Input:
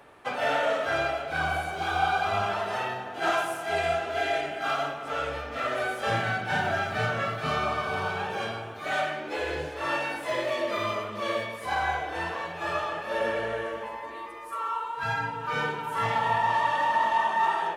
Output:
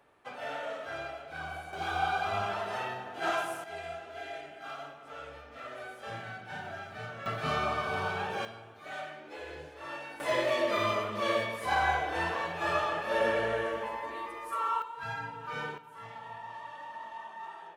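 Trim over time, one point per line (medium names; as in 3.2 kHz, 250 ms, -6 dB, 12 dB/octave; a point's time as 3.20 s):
-12 dB
from 1.73 s -5 dB
from 3.64 s -14 dB
from 7.26 s -3 dB
from 8.45 s -12.5 dB
from 10.20 s 0 dB
from 14.82 s -8.5 dB
from 15.78 s -19 dB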